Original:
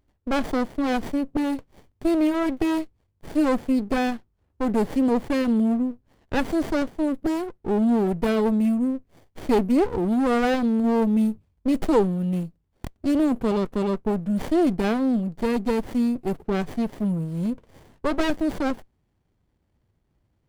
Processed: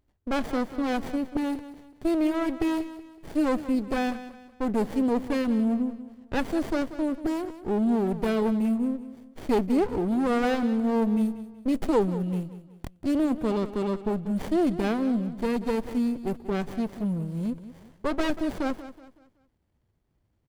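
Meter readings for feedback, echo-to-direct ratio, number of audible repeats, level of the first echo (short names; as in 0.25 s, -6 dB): 37%, -13.5 dB, 3, -14.0 dB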